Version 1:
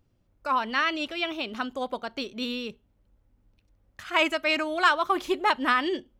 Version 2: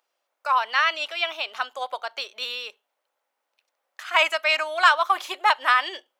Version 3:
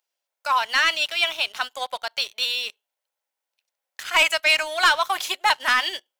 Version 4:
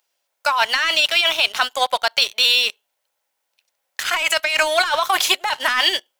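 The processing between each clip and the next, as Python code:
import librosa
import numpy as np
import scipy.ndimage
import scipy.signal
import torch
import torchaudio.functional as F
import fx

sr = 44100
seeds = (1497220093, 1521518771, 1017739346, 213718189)

y1 = scipy.signal.sosfilt(scipy.signal.butter(4, 640.0, 'highpass', fs=sr, output='sos'), x)
y1 = F.gain(torch.from_numpy(y1), 4.5).numpy()
y2 = fx.high_shelf(y1, sr, hz=2700.0, db=12.0)
y2 = fx.notch(y2, sr, hz=1200.0, q=8.7)
y2 = fx.leveller(y2, sr, passes=2)
y2 = F.gain(torch.from_numpy(y2), -8.0).numpy()
y3 = fx.over_compress(y2, sr, threshold_db=-24.0, ratio=-1.0)
y3 = F.gain(torch.from_numpy(y3), 7.0).numpy()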